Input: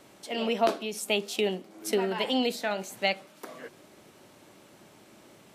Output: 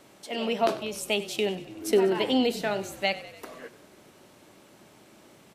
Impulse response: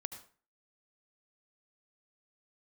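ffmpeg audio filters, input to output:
-filter_complex "[0:a]asettb=1/sr,asplit=3[a][b][c];[a]atrim=end=1.684[d];[b]atrim=start=1.68:end=2.91,asetpts=PTS-STARTPTS,afade=t=in:d=0.004:c=qsin,afade=t=out:st=1.226:d=0.004:c=qsin,equalizer=f=340:w=1.5:g=7.5[e];[c]atrim=start=2.906[f];[d][e]acrossfade=d=0.004:c1=hsin:c2=qsin[g];[g][f]acrossfade=d=0.004:c1=qsin:c2=hsin,asplit=2[h][i];[i]asplit=6[j][k][l][m][n][o];[j]adelay=96,afreqshift=-32,volume=-16dB[p];[k]adelay=192,afreqshift=-64,volume=-20.3dB[q];[l]adelay=288,afreqshift=-96,volume=-24.6dB[r];[m]adelay=384,afreqshift=-128,volume=-28.9dB[s];[n]adelay=480,afreqshift=-160,volume=-33.2dB[t];[o]adelay=576,afreqshift=-192,volume=-37.5dB[u];[p][q][r][s][t][u]amix=inputs=6:normalize=0[v];[h][v]amix=inputs=2:normalize=0"

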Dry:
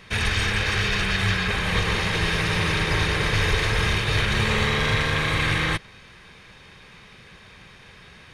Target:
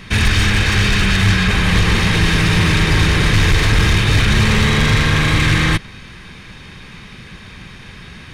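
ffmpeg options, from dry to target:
-af "equalizer=f=170:w=0.31:g=-3.5,aeval=exprs='0.299*(cos(1*acos(clip(val(0)/0.299,-1,1)))-cos(1*PI/2))+0.119*(cos(5*acos(clip(val(0)/0.299,-1,1)))-cos(5*PI/2))':c=same,lowshelf=f=370:t=q:w=1.5:g=7"

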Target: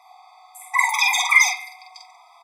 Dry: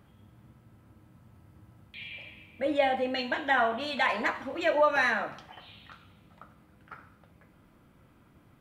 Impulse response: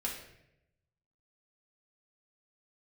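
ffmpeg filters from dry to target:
-filter_complex "[0:a]aemphasis=mode=reproduction:type=75kf,asetrate=155673,aresample=44100,asplit=2[a][b];[b]adelay=47,volume=-3dB[c];[a][c]amix=inputs=2:normalize=0,asplit=2[d][e];[1:a]atrim=start_sample=2205,lowpass=3.6k[f];[e][f]afir=irnorm=-1:irlink=0,volume=-7dB[g];[d][g]amix=inputs=2:normalize=0,afftfilt=real='re*eq(mod(floor(b*sr/1024/650),2),1)':imag='im*eq(mod(floor(b*sr/1024/650),2),1)':win_size=1024:overlap=0.75,volume=9dB"

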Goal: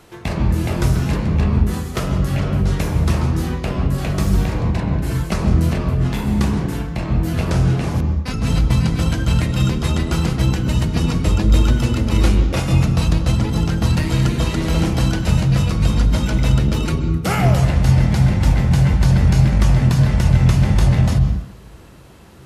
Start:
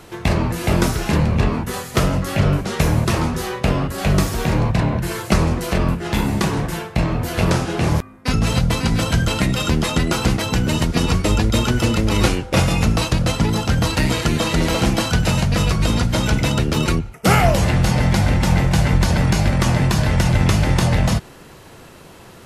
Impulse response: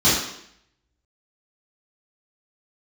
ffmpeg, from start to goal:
-filter_complex "[0:a]asplit=2[a][b];[b]aemphasis=mode=reproduction:type=bsi[c];[1:a]atrim=start_sample=2205,adelay=122[d];[c][d]afir=irnorm=-1:irlink=0,volume=-28dB[e];[a][e]amix=inputs=2:normalize=0,volume=-5.5dB"

